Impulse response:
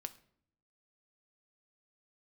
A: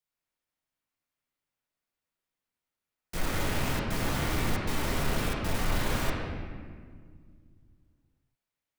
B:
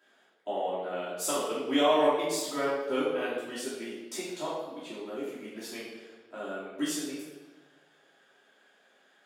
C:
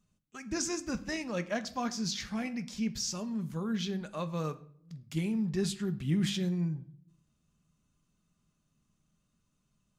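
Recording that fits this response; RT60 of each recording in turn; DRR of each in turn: C; 1.9 s, 1.3 s, 0.65 s; -6.5 dB, -11.5 dB, 9.5 dB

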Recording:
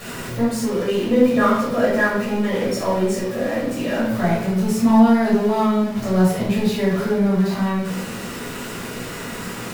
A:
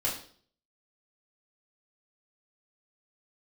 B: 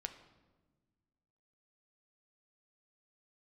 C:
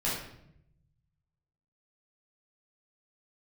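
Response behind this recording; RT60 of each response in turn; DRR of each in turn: C; 0.50 s, 1.3 s, 0.75 s; -6.0 dB, 6.5 dB, -8.0 dB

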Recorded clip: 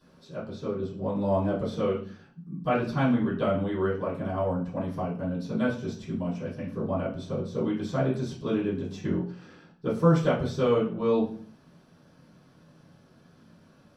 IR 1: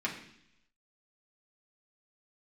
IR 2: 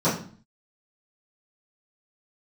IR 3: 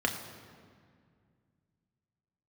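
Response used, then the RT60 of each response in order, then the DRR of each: 2; 0.70 s, 0.45 s, 2.1 s; -4.0 dB, -14.5 dB, 2.0 dB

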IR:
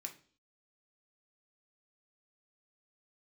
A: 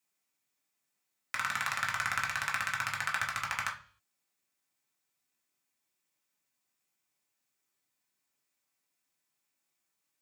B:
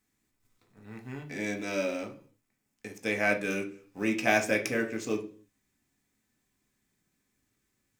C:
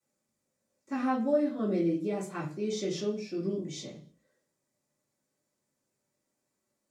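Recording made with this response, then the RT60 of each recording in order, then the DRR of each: B; 0.45 s, 0.45 s, 0.45 s; -2.5 dB, 2.0 dB, -12.5 dB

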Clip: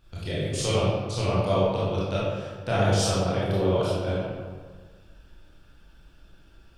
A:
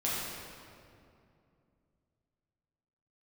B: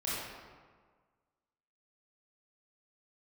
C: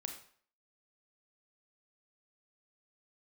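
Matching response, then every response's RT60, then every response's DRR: B; 2.5 s, 1.6 s, 0.50 s; -8.0 dB, -9.0 dB, 4.0 dB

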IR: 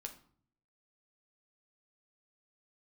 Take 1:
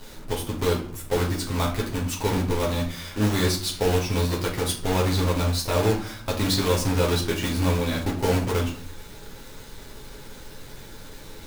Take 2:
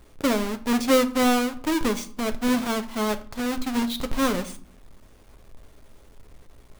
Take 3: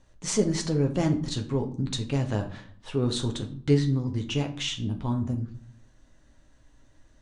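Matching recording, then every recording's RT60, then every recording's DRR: 3; 0.50 s, 0.55 s, 0.55 s; -3.5 dB, 8.0 dB, 3.0 dB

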